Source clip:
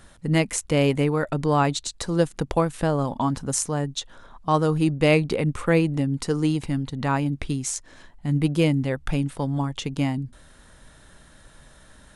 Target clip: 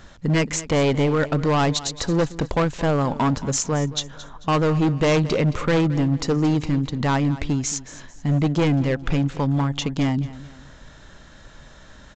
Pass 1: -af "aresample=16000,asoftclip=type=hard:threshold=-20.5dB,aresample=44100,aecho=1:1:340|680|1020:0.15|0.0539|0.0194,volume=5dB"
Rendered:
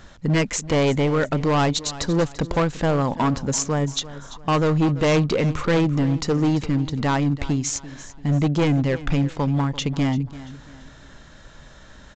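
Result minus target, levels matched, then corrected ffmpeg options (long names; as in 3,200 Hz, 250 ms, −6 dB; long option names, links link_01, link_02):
echo 119 ms late
-af "aresample=16000,asoftclip=type=hard:threshold=-20.5dB,aresample=44100,aecho=1:1:221|442|663:0.15|0.0539|0.0194,volume=5dB"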